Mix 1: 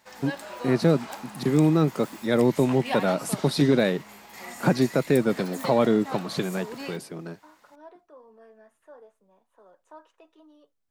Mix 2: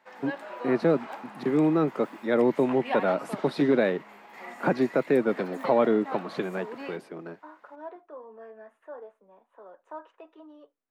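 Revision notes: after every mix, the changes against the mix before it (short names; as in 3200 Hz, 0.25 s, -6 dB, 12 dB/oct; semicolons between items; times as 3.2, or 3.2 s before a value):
second voice +7.0 dB; master: add three-band isolator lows -16 dB, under 220 Hz, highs -18 dB, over 2800 Hz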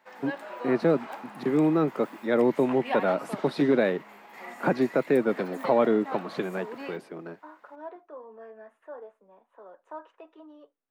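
background: add high shelf 12000 Hz +9 dB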